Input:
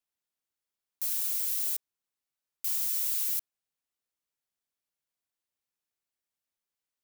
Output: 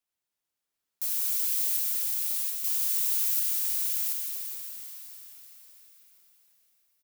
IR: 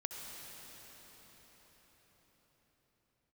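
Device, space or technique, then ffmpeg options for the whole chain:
cathedral: -filter_complex "[1:a]atrim=start_sample=2205[link_01];[0:a][link_01]afir=irnorm=-1:irlink=0,aecho=1:1:731:0.708,volume=4dB"

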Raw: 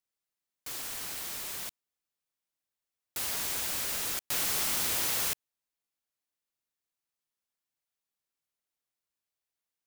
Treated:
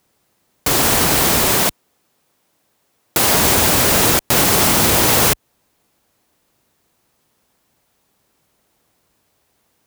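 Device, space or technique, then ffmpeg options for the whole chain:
mastering chain: -filter_complex "[0:a]asettb=1/sr,asplit=3[link_01][link_02][link_03];[link_01]atrim=end=1.544[link_04];[link_02]atrim=start=1.54:end=3.34,asetpts=PTS-STARTPTS,afade=type=in:duration=0.004:curve=qsin,afade=type=out:start_time=1.796:duration=0.004:curve=qsin,highpass=frequency=150:poles=1[link_05];[link_03]atrim=start=3.336[link_06];[link_04][link_05]acrossfade=duration=0.004:curve1=hsin:curve2=qsin[link_07];[link_07][link_06]acrossfade=duration=0.004:curve1=qsin:curve2=hsin,highpass=41,equalizer=frequency=870:width_type=o:width=0.77:gain=1.5,acompressor=threshold=-34dB:ratio=2.5,asoftclip=type=tanh:threshold=-25dB,tiltshelf=frequency=930:gain=6.5,alimiter=level_in=33dB:limit=-1dB:release=50:level=0:latency=1,volume=-3.5dB"

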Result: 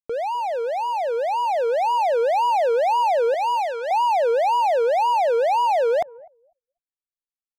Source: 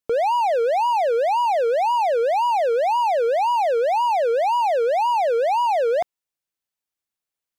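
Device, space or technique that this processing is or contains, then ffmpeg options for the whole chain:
voice memo with heavy noise removal: -filter_complex "[0:a]asettb=1/sr,asplit=3[link_01][link_02][link_03];[link_01]atrim=end=3.344[link_04];[link_02]atrim=start=3.34:end=3.91,asetpts=PTS-STARTPTS,afade=type=in:duration=0.004:curve=qsin,afade=type=out:start_time=0.566:duration=0.004:curve=qsin,highpass=830[link_05];[link_03]atrim=start=3.906[link_06];[link_04][link_05]acrossfade=duration=0.004:curve1=hsin:curve2=qsin[link_07];[link_07][link_06]acrossfade=duration=0.004:curve1=qsin:curve2=hsin,asplit=2[link_08][link_09];[link_09]adelay=251,lowpass=frequency=2200:poles=1,volume=-22dB,asplit=2[link_10][link_11];[link_11]adelay=251,lowpass=frequency=2200:poles=1,volume=0.37,asplit=2[link_12][link_13];[link_13]adelay=251,lowpass=frequency=2200:poles=1,volume=0.37[link_14];[link_08][link_10][link_12][link_14]amix=inputs=4:normalize=0,anlmdn=0.631,dynaudnorm=framelen=440:gausssize=7:maxgain=6dB,volume=-5.5dB"

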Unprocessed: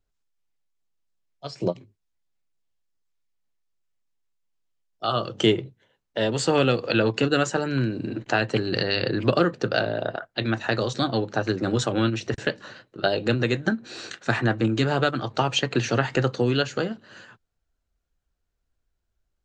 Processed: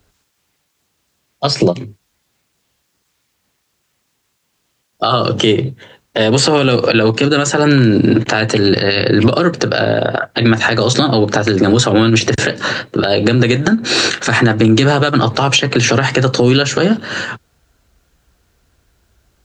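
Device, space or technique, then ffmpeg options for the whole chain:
mastering chain: -filter_complex "[0:a]highpass=58,equalizer=frequency=640:width_type=o:width=0.77:gain=-1.5,acrossover=split=91|5100[link_01][link_02][link_03];[link_01]acompressor=threshold=-52dB:ratio=4[link_04];[link_02]acompressor=threshold=-28dB:ratio=4[link_05];[link_03]acompressor=threshold=-43dB:ratio=4[link_06];[link_04][link_05][link_06]amix=inputs=3:normalize=0,acompressor=threshold=-32dB:ratio=2.5,alimiter=level_in=26.5dB:limit=-1dB:release=50:level=0:latency=1,volume=-1dB"

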